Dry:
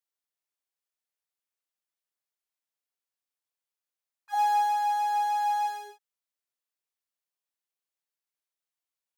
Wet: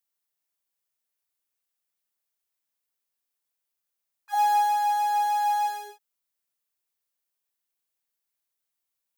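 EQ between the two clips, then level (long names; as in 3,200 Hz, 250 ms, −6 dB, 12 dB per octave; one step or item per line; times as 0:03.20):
high-shelf EQ 10,000 Hz +8.5 dB
+2.5 dB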